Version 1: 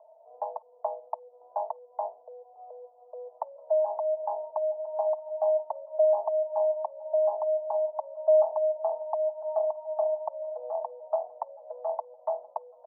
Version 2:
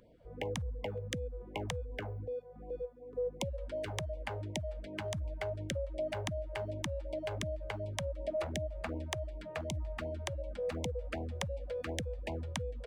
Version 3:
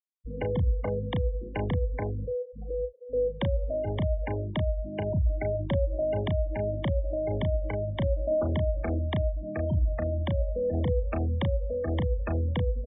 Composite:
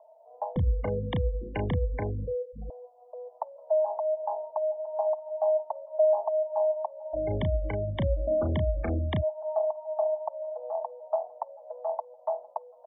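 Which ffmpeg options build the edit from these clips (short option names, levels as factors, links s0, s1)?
-filter_complex "[2:a]asplit=2[s0][s1];[0:a]asplit=3[s2][s3][s4];[s2]atrim=end=0.562[s5];[s0]atrim=start=0.558:end=2.702[s6];[s3]atrim=start=2.698:end=7.17[s7];[s1]atrim=start=7.13:end=9.24[s8];[s4]atrim=start=9.2[s9];[s5][s6]acrossfade=d=0.004:c1=hsin:c2=hsin[s10];[s10][s7]acrossfade=d=0.004:c1=hsin:c2=hsin[s11];[s11][s8]acrossfade=d=0.04:c1=tri:c2=tri[s12];[s12][s9]acrossfade=d=0.04:c1=tri:c2=tri"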